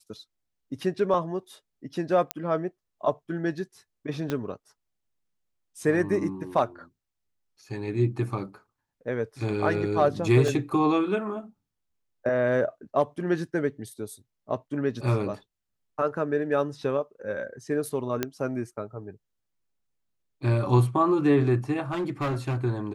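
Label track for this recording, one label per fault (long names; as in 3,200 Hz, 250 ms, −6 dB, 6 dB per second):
1.140000	1.140000	drop-out 2.2 ms
2.310000	2.310000	click −9 dBFS
4.300000	4.300000	click −15 dBFS
10.480000	10.480000	drop-out 2.1 ms
18.230000	18.230000	click −11 dBFS
21.910000	22.570000	clipping −24 dBFS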